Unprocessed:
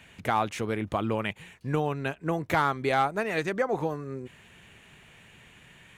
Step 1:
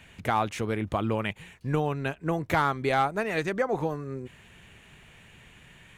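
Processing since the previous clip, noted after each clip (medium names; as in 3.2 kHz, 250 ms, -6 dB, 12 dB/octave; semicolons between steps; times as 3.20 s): bass shelf 70 Hz +9 dB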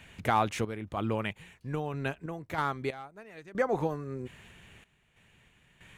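random-step tremolo 3.1 Hz, depth 90%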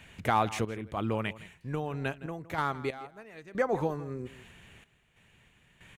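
echo from a far wall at 28 m, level -17 dB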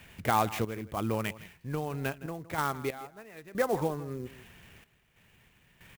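sampling jitter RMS 0.029 ms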